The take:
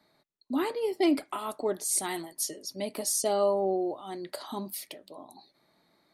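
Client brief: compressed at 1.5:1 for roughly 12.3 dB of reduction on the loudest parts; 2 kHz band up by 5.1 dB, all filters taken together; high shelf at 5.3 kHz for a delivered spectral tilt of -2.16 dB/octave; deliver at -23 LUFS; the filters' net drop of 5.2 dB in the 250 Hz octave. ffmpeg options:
-af "equalizer=f=250:t=o:g=-8,equalizer=f=2000:t=o:g=7,highshelf=f=5300:g=-8,acompressor=threshold=0.00126:ratio=1.5,volume=10.6"

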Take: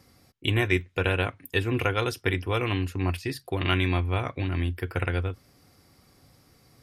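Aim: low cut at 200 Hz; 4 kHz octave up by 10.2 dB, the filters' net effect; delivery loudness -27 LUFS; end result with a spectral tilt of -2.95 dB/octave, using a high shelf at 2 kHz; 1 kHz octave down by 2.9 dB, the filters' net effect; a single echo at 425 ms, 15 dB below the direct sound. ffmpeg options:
-af "highpass=200,equalizer=f=1000:t=o:g=-8,highshelf=f=2000:g=8.5,equalizer=f=4000:t=o:g=6.5,aecho=1:1:425:0.178,volume=0.794"

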